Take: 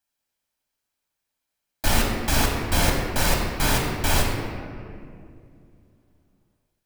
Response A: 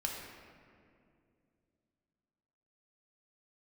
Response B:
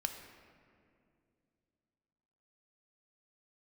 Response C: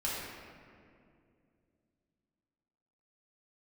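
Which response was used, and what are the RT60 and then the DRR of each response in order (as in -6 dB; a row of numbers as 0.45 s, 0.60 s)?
A; 2.4 s, 2.4 s, 2.4 s; -1.0 dB, 5.0 dB, -7.5 dB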